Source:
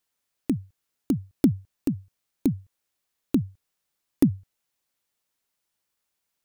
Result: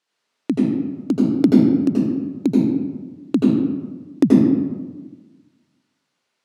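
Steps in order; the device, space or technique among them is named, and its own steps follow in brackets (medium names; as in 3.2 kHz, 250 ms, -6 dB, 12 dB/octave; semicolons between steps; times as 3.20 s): supermarket ceiling speaker (band-pass 230–5400 Hz; reverberation RT60 1.3 s, pre-delay 77 ms, DRR -5 dB); trim +6 dB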